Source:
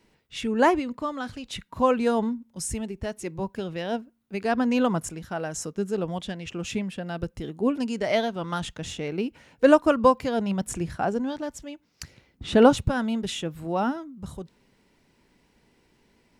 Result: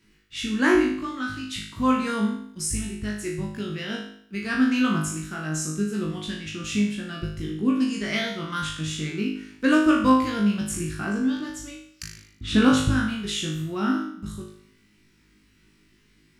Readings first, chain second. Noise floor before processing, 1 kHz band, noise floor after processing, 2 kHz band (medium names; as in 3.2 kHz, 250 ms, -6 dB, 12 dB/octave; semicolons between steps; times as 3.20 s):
-66 dBFS, -2.5 dB, -61 dBFS, +5.0 dB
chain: high-order bell 660 Hz -15.5 dB 1.3 oct; flutter echo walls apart 3.3 m, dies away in 0.62 s